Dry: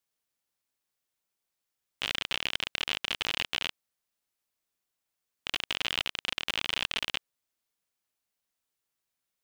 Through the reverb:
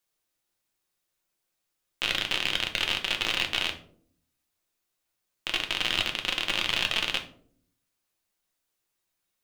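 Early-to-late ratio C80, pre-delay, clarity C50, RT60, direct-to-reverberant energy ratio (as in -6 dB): 17.0 dB, 3 ms, 12.0 dB, 0.60 s, 3.0 dB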